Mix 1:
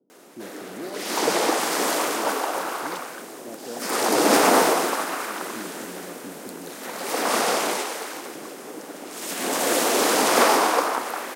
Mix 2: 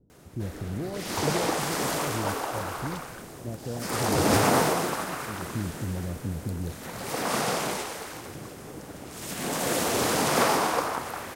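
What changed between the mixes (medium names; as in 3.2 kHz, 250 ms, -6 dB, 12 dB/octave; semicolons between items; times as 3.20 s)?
background -5.5 dB; master: remove high-pass 250 Hz 24 dB/octave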